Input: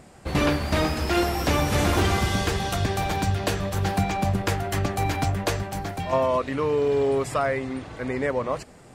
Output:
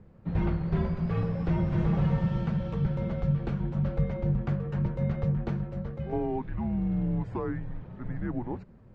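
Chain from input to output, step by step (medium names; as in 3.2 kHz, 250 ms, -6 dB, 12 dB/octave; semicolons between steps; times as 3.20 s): tilt EQ -2 dB/octave; frequency shift -240 Hz; tape spacing loss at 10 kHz 33 dB; trim -8 dB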